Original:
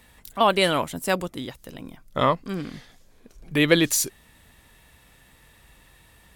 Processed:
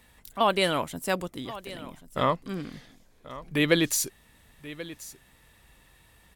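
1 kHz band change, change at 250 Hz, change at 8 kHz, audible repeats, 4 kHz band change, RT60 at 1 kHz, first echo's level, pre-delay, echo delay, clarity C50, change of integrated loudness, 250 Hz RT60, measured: −4.0 dB, −4.0 dB, −4.0 dB, 1, −4.0 dB, no reverb audible, −16.5 dB, no reverb audible, 1,084 ms, no reverb audible, −4.5 dB, no reverb audible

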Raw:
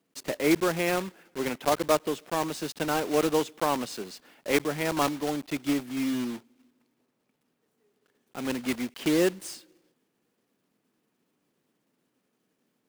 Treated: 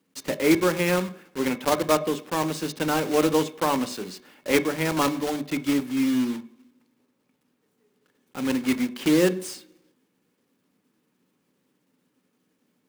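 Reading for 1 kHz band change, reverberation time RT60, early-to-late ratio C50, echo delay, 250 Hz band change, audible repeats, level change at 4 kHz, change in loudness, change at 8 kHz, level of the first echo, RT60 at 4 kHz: +2.5 dB, 0.60 s, 17.0 dB, no echo audible, +5.0 dB, no echo audible, +3.0 dB, +3.5 dB, +3.0 dB, no echo audible, 0.60 s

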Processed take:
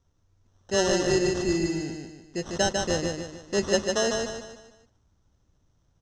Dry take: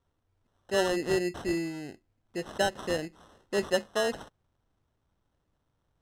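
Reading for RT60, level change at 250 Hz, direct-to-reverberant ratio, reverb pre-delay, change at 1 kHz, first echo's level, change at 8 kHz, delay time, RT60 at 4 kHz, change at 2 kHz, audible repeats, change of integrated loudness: no reverb audible, +5.5 dB, no reverb audible, no reverb audible, +2.5 dB, −4.0 dB, +11.5 dB, 149 ms, no reverb audible, +2.5 dB, 5, +4.0 dB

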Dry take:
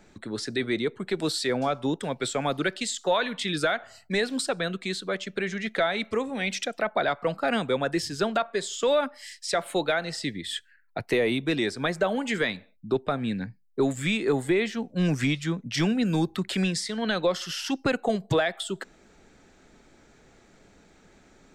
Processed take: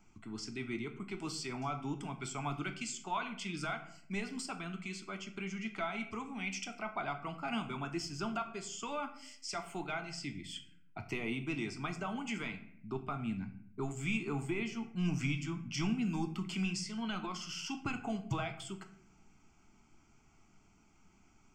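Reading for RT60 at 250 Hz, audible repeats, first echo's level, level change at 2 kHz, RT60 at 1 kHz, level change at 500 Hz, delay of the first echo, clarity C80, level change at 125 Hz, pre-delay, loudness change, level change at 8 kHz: 0.95 s, no echo audible, no echo audible, −11.5 dB, 0.60 s, −18.0 dB, no echo audible, 14.5 dB, −8.0 dB, 9 ms, −11.5 dB, −9.5 dB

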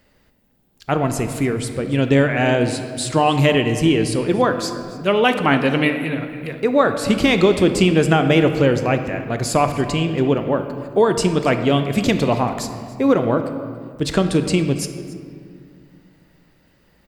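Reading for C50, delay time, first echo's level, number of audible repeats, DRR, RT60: 8.5 dB, 281 ms, −19.5 dB, 1, 7.0 dB, 2.1 s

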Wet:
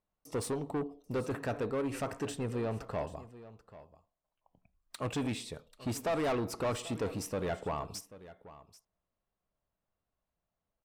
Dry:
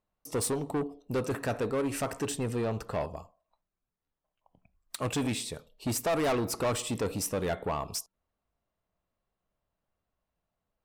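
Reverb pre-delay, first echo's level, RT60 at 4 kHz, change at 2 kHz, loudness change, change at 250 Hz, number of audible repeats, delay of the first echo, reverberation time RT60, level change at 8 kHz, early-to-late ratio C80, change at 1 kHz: no reverb audible, −17.0 dB, no reverb audible, −4.5 dB, −4.0 dB, −3.5 dB, 1, 787 ms, no reverb audible, −9.5 dB, no reverb audible, −3.5 dB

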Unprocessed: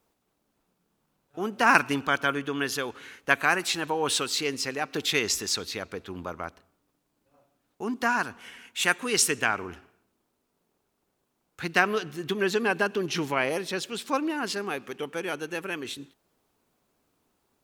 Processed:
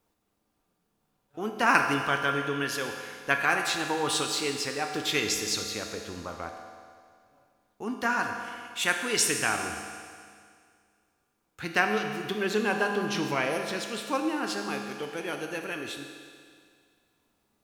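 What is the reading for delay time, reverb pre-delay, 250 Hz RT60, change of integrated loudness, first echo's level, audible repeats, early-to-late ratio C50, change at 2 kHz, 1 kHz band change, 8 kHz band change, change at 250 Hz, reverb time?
no echo audible, 4 ms, 2.1 s, −1.5 dB, no echo audible, no echo audible, 5.0 dB, −1.5 dB, −1.0 dB, −1.0 dB, −1.0 dB, 2.1 s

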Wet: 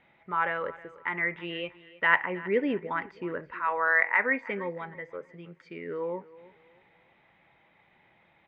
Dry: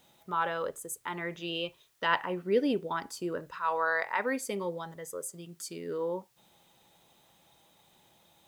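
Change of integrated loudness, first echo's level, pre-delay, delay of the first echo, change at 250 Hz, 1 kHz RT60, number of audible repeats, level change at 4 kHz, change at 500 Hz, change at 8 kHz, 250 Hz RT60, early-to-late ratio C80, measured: +4.0 dB, −19.0 dB, no reverb audible, 318 ms, 0.0 dB, no reverb audible, 2, −4.5 dB, 0.0 dB, below −35 dB, no reverb audible, no reverb audible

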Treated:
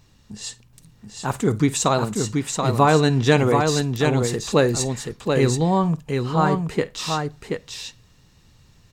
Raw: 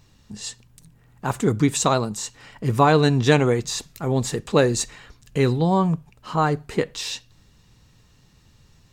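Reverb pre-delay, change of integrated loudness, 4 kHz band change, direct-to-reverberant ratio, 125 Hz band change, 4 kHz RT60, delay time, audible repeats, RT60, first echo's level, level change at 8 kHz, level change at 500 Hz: no reverb audible, +1.0 dB, +1.5 dB, no reverb audible, +1.5 dB, no reverb audible, 51 ms, 2, no reverb audible, −19.0 dB, +1.5 dB, +1.5 dB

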